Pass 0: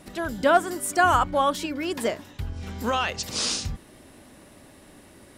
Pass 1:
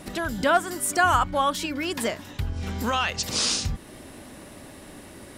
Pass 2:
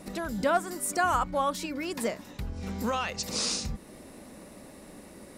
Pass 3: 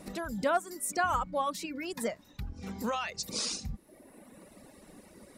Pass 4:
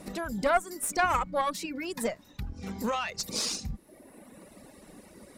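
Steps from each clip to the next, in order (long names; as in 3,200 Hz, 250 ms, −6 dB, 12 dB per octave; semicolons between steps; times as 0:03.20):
dynamic equaliser 440 Hz, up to −6 dB, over −36 dBFS, Q 0.75; in parallel at +0.5 dB: downward compressor, threshold −35 dBFS, peak gain reduction 17.5 dB
thirty-one-band graphic EQ 100 Hz −11 dB, 200 Hz +6 dB, 500 Hz +5 dB, 1,600 Hz −4 dB, 3,150 Hz −7 dB; level −5 dB
reverb reduction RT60 1.4 s; level −2.5 dB
harmonic generator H 2 −8 dB, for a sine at −16 dBFS; level +2.5 dB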